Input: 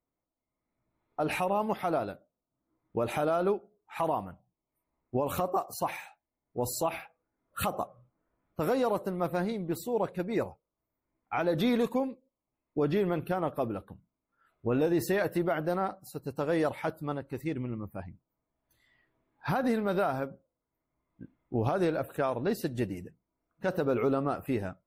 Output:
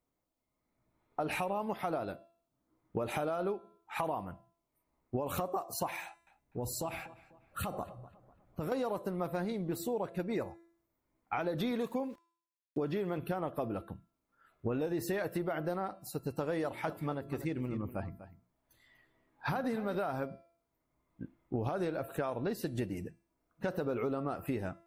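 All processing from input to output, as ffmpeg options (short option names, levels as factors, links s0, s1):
-filter_complex "[0:a]asettb=1/sr,asplit=3[s0][s1][s2];[s0]atrim=end=6.024[s3];[s1]atrim=start=6.02:end=8.72,asetpts=PTS-STARTPTS,afade=t=in:d=0.004:c=qsin,afade=t=out:st=2.696:d=0.004:c=qsin,lowshelf=f=200:g=9,acompressor=threshold=0.00708:ratio=2:attack=3.2:release=140:knee=1:detection=peak,asplit=2[s4][s5];[s5]adelay=248,lowpass=f=2700:p=1,volume=0.126,asplit=2[s6][s7];[s7]adelay=248,lowpass=f=2700:p=1,volume=0.4,asplit=2[s8][s9];[s9]adelay=248,lowpass=f=2700:p=1,volume=0.4[s10];[s4][s6][s8][s10]amix=inputs=4:normalize=0,atrim=end_sample=119070[s11];[s2]atrim=start=8.716[s12];[s3][s11]acrossfade=d=0.004:c1=hsin:c2=qsin[s13];[s13][s12]acrossfade=d=0.004:c1=qsin:c2=hsin,asettb=1/sr,asplit=3[s14][s15][s16];[s14]atrim=end=11.714[s17];[s15]atrim=start=11.71:end=13.18,asetpts=PTS-STARTPTS,afade=t=in:d=0.004:c=qsin,afade=t=out:st=1.466:d=0.004:c=qsin,highpass=f=81:p=1,aeval=exprs='val(0)*gte(abs(val(0)),0.00168)':c=same[s18];[s16]atrim=start=13.176[s19];[s17][s18]acrossfade=d=0.004:c1=hsin:c2=qsin[s20];[s20][s19]acrossfade=d=0.004:c1=qsin:c2=hsin,asettb=1/sr,asplit=3[s21][s22][s23];[s21]atrim=end=16.624[s24];[s22]atrim=start=16.62:end=19.95,asetpts=PTS-STARTPTS,afade=t=in:d=0.004:c=qsin,afade=t=out:st=3.326:d=0.004:c=qsin,bandreject=f=60:t=h:w=6,bandreject=f=120:t=h:w=6,bandreject=f=180:t=h:w=6,bandreject=f=240:t=h:w=6,bandreject=f=300:t=h:w=6,bandreject=f=360:t=h:w=6,bandreject=f=420:t=h:w=6,aecho=1:1:244:0.178,atrim=end_sample=146853[s25];[s23]atrim=start=19.946[s26];[s24][s25]acrossfade=d=0.004:c1=hsin:c2=qsin[s27];[s27][s26]acrossfade=d=0.004:c1=qsin:c2=hsin,bandreject=f=337.2:t=h:w=4,bandreject=f=674.4:t=h:w=4,bandreject=f=1011.6:t=h:w=4,bandreject=f=1348.8:t=h:w=4,bandreject=f=1686:t=h:w=4,bandreject=f=2023.2:t=h:w=4,bandreject=f=2360.4:t=h:w=4,bandreject=f=2697.6:t=h:w=4,bandreject=f=3034.8:t=h:w=4,bandreject=f=3372:t=h:w=4,bandreject=f=3709.2:t=h:w=4,bandreject=f=4046.4:t=h:w=4,bandreject=f=4383.6:t=h:w=4,bandreject=f=4720.8:t=h:w=4,bandreject=f=5058:t=h:w=4,bandreject=f=5395.2:t=h:w=4,bandreject=f=5732.4:t=h:w=4,bandreject=f=6069.6:t=h:w=4,bandreject=f=6406.8:t=h:w=4,bandreject=f=6744:t=h:w=4,bandreject=f=7081.2:t=h:w=4,bandreject=f=7418.4:t=h:w=4,bandreject=f=7755.6:t=h:w=4,bandreject=f=8092.8:t=h:w=4,bandreject=f=8430:t=h:w=4,bandreject=f=8767.2:t=h:w=4,bandreject=f=9104.4:t=h:w=4,bandreject=f=9441.6:t=h:w=4,bandreject=f=9778.8:t=h:w=4,bandreject=f=10116:t=h:w=4,acompressor=threshold=0.0178:ratio=5,volume=1.41"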